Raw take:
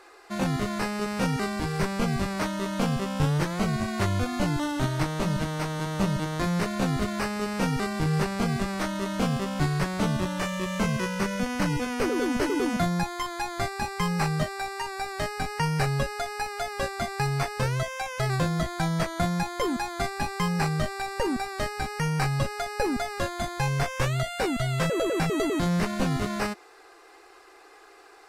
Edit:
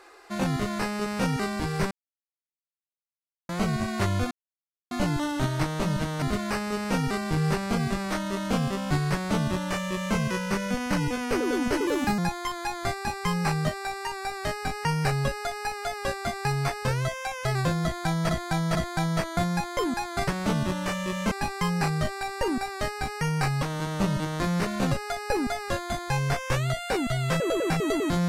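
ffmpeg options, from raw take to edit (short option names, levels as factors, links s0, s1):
-filter_complex "[0:a]asplit=13[s0][s1][s2][s3][s4][s5][s6][s7][s8][s9][s10][s11][s12];[s0]atrim=end=1.91,asetpts=PTS-STARTPTS,afade=t=out:st=1.906:d=0.004:c=hsin[s13];[s1]atrim=start=1.91:end=3.49,asetpts=PTS-STARTPTS,volume=0[s14];[s2]atrim=start=3.49:end=4.31,asetpts=PTS-STARTPTS,afade=t=in:d=0.004:c=hsin,afade=t=out:st=0.816:d=0.004:c=hsin,apad=pad_dur=0.6[s15];[s3]atrim=start=4.31:end=5.622,asetpts=PTS-STARTPTS,afade=t=in:d=0.004:c=hsin[s16];[s4]atrim=start=6.908:end=12.564[s17];[s5]atrim=start=12.56:end=12.93,asetpts=PTS-STARTPTS,asetrate=52038,aresample=44100[s18];[s6]atrim=start=12.926:end=19.042[s19];[s7]atrim=start=18.578:end=19.042[s20];[s8]atrim=start=18.578:end=20.102[s21];[s9]atrim=start=9.808:end=10.852[s22];[s10]atrim=start=20.098:end=22.412[s23];[s11]atrim=start=5.618:end=6.912[s24];[s12]atrim=start=22.408[s25];[s13][s14][s15][s16]concat=n=4:v=0:a=1[s26];[s26][s17]acrossfade=d=0.004:c1=hsin:c2=hsin[s27];[s27][s18]acrossfade=d=0.004:c1=hsin:c2=hsin[s28];[s28][s19]acrossfade=d=0.004:c1=hsin:c2=hsin[s29];[s29][s20]acrossfade=d=0.004:c1=hsin:c2=hsin[s30];[s30][s21]acrossfade=d=0.004:c1=hsin:c2=hsin[s31];[s31][s22]acrossfade=d=0.004:c1=hsin:c2=hsin[s32];[s32][s23]acrossfade=d=0.004:c1=hsin:c2=hsin[s33];[s33][s24]acrossfade=d=0.004:c1=hsin:c2=hsin[s34];[s34][s25]acrossfade=d=0.004:c1=hsin:c2=hsin"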